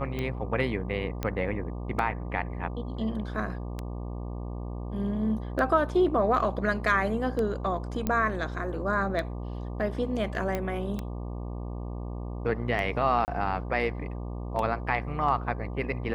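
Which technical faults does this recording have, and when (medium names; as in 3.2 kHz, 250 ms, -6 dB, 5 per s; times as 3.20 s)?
buzz 60 Hz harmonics 20 -35 dBFS
tick 33 1/3 rpm -19 dBFS
1.23 s: pop -16 dBFS
8.07 s: pop -14 dBFS
10.55 s: pop -16 dBFS
13.25–13.28 s: dropout 29 ms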